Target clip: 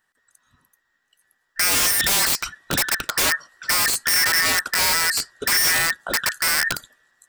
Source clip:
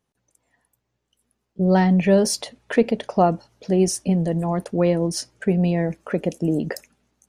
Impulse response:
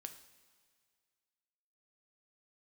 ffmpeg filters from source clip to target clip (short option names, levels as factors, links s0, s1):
-filter_complex "[0:a]afftfilt=real='real(if(between(b,1,1012),(2*floor((b-1)/92)+1)*92-b,b),0)':imag='imag(if(between(b,1,1012),(2*floor((b-1)/92)+1)*92-b,b),0)*if(between(b,1,1012),-1,1)':win_size=2048:overlap=0.75,asplit=2[s0][s1];[s1]alimiter=limit=0.251:level=0:latency=1:release=152,volume=0.891[s2];[s0][s2]amix=inputs=2:normalize=0,aeval=exprs='(mod(5.01*val(0)+1,2)-1)/5.01':c=same"